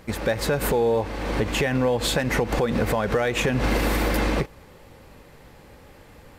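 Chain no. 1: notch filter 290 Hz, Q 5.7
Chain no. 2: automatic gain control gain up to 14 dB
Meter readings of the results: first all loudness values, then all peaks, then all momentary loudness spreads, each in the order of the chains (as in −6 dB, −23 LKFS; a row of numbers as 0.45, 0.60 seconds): −24.0, −12.5 LKFS; −12.0, −2.0 dBFS; 4, 6 LU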